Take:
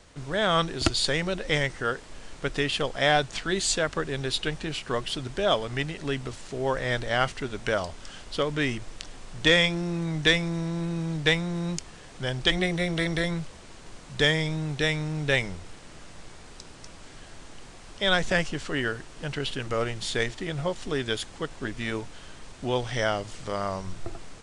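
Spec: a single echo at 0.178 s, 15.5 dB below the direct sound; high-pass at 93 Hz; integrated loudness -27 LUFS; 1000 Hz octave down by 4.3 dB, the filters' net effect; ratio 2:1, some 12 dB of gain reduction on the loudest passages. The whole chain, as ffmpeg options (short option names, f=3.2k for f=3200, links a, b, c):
-af "highpass=93,equalizer=f=1k:t=o:g=-6.5,acompressor=threshold=-40dB:ratio=2,aecho=1:1:178:0.168,volume=10.5dB"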